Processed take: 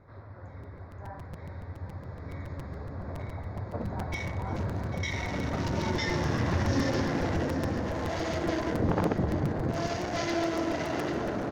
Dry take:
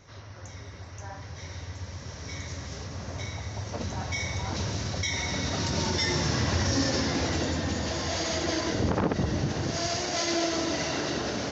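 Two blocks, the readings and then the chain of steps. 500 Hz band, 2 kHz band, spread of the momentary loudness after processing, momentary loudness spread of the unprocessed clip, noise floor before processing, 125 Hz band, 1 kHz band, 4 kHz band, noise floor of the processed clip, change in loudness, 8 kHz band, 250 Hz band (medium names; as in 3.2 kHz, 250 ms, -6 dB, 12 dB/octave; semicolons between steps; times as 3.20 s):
0.0 dB, -3.0 dB, 15 LU, 15 LU, -44 dBFS, -0.5 dB, -0.5 dB, -10.5 dB, -46 dBFS, -2.0 dB, no reading, 0.0 dB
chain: local Wiener filter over 15 samples; tone controls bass -1 dB, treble -11 dB; on a send: multi-tap echo 43/355/797 ms -15.5/-17/-11.5 dB; on the sum: crackling interface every 0.14 s, samples 256, repeat, from 0.63 s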